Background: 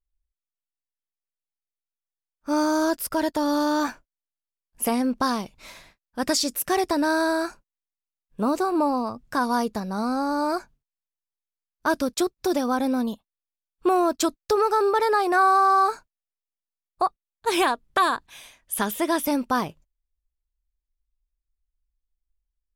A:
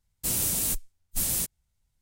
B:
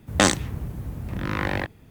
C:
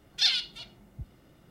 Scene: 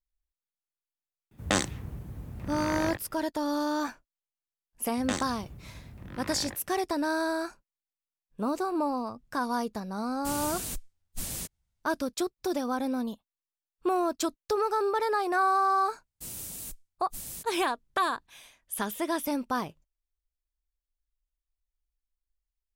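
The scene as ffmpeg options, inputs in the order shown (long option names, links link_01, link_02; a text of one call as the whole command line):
ffmpeg -i bed.wav -i cue0.wav -i cue1.wav -filter_complex "[2:a]asplit=2[link_01][link_02];[1:a]asplit=2[link_03][link_04];[0:a]volume=-6.5dB[link_05];[link_03]highshelf=frequency=8300:gain=-9[link_06];[link_01]atrim=end=1.9,asetpts=PTS-STARTPTS,volume=-8dB,afade=type=in:duration=0.004:curve=hsin,afade=type=out:start_time=1.896:duration=0.004:curve=hsin,adelay=1310[link_07];[link_02]atrim=end=1.9,asetpts=PTS-STARTPTS,volume=-14.5dB,afade=type=in:duration=0.004:curve=hsin,afade=type=out:start_time=1.896:duration=0.004:curve=hsin,adelay=215649S[link_08];[link_06]atrim=end=2.01,asetpts=PTS-STARTPTS,volume=-4dB,afade=type=in:duration=0.004:curve=hsin,afade=type=out:start_time=2.006:duration=0.004:curve=hsin,adelay=10010[link_09];[link_04]atrim=end=2.01,asetpts=PTS-STARTPTS,volume=-13dB,afade=type=in:duration=0.004:curve=hsin,afade=type=out:start_time=2.006:duration=0.004:curve=hsin,adelay=15970[link_10];[link_05][link_07][link_08][link_09][link_10]amix=inputs=5:normalize=0" out.wav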